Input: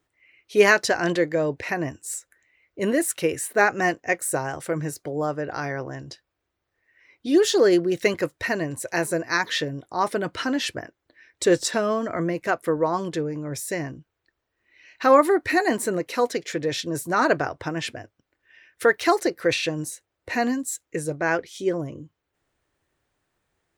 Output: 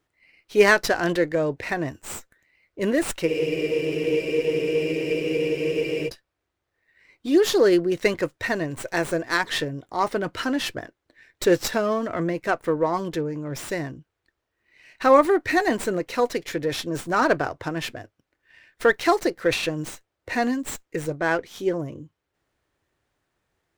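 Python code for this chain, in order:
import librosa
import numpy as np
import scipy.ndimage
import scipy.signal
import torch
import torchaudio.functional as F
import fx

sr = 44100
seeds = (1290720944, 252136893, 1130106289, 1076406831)

y = fx.spec_freeze(x, sr, seeds[0], at_s=3.29, hold_s=2.79)
y = fx.running_max(y, sr, window=3)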